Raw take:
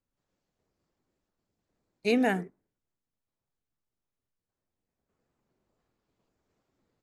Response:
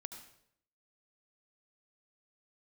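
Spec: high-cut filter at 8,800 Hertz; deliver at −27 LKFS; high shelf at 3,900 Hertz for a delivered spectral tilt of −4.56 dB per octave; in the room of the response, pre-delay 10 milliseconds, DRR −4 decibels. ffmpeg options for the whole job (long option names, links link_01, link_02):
-filter_complex "[0:a]lowpass=8800,highshelf=frequency=3900:gain=-3,asplit=2[link_01][link_02];[1:a]atrim=start_sample=2205,adelay=10[link_03];[link_02][link_03]afir=irnorm=-1:irlink=0,volume=8dB[link_04];[link_01][link_04]amix=inputs=2:normalize=0,volume=-3dB"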